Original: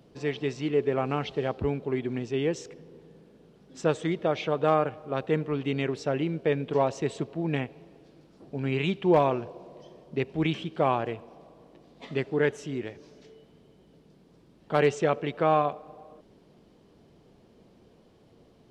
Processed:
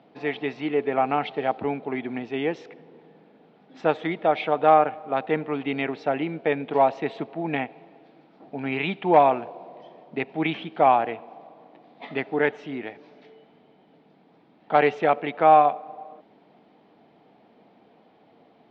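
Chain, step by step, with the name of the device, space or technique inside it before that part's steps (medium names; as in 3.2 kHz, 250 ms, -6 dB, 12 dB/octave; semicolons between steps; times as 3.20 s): phone earpiece (cabinet simulation 330–3200 Hz, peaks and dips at 380 Hz -9 dB, 530 Hz -7 dB, 770 Hz +5 dB, 1.1 kHz -5 dB, 1.6 kHz -4 dB, 2.9 kHz -6 dB); trim +8.5 dB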